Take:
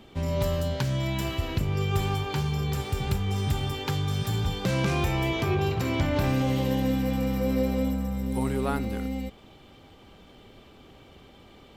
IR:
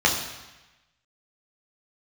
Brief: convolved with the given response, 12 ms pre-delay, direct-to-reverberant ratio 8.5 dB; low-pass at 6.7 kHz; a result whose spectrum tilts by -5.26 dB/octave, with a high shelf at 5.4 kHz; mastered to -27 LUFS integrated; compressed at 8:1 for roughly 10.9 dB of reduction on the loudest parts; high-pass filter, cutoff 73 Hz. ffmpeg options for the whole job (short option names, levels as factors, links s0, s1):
-filter_complex "[0:a]highpass=73,lowpass=6700,highshelf=f=5400:g=8,acompressor=threshold=0.0224:ratio=8,asplit=2[s0][s1];[1:a]atrim=start_sample=2205,adelay=12[s2];[s1][s2]afir=irnorm=-1:irlink=0,volume=0.0501[s3];[s0][s3]amix=inputs=2:normalize=0,volume=2.99"